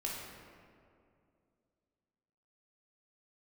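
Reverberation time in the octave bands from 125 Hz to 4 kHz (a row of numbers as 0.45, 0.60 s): 2.7, 2.9, 2.7, 2.2, 1.8, 1.2 s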